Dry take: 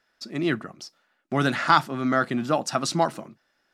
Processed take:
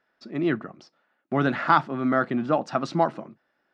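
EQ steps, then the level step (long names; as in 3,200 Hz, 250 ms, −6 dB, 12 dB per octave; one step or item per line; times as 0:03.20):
high-pass filter 160 Hz 6 dB per octave
head-to-tape spacing loss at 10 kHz 31 dB
+3.0 dB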